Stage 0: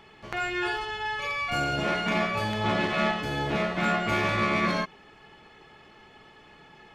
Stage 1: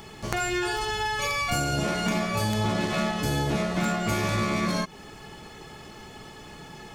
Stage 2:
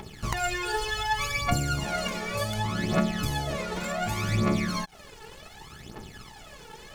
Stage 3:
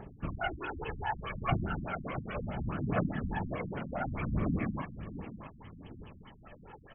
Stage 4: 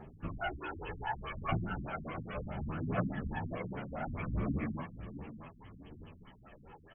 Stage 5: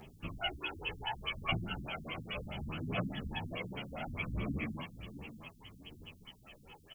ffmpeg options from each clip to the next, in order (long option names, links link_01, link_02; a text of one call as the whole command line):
ffmpeg -i in.wav -af "equalizer=frequency=2900:width_type=o:width=2.1:gain=-6,acompressor=threshold=-34dB:ratio=6,bass=frequency=250:gain=5,treble=frequency=4000:gain=15,volume=8.5dB" out.wav
ffmpeg -i in.wav -af "acompressor=threshold=-27dB:ratio=6,aeval=exprs='sgn(val(0))*max(abs(val(0))-0.00398,0)':channel_layout=same,aphaser=in_gain=1:out_gain=1:delay=2.3:decay=0.71:speed=0.67:type=triangular" out.wav
ffmpeg -i in.wav -filter_complex "[0:a]afftfilt=real='hypot(re,im)*cos(2*PI*random(0))':imag='hypot(re,im)*sin(2*PI*random(1))':win_size=512:overlap=0.75,asplit=2[link_01][link_02];[link_02]adelay=655,lowpass=frequency=2000:poles=1,volume=-11.5dB,asplit=2[link_03][link_04];[link_04]adelay=655,lowpass=frequency=2000:poles=1,volume=0.31,asplit=2[link_05][link_06];[link_06]adelay=655,lowpass=frequency=2000:poles=1,volume=0.31[link_07];[link_01][link_03][link_05][link_07]amix=inputs=4:normalize=0,afftfilt=real='re*lt(b*sr/1024,270*pow(3400/270,0.5+0.5*sin(2*PI*4.8*pts/sr)))':imag='im*lt(b*sr/1024,270*pow(3400/270,0.5+0.5*sin(2*PI*4.8*pts/sr)))':win_size=1024:overlap=0.75,volume=1dB" out.wav
ffmpeg -i in.wav -filter_complex "[0:a]asplit=2[link_01][link_02];[link_02]adelay=10.5,afreqshift=1.5[link_03];[link_01][link_03]amix=inputs=2:normalize=1" out.wav
ffmpeg -i in.wav -af "aexciter=amount=11:drive=3.3:freq=2500,volume=-3dB" out.wav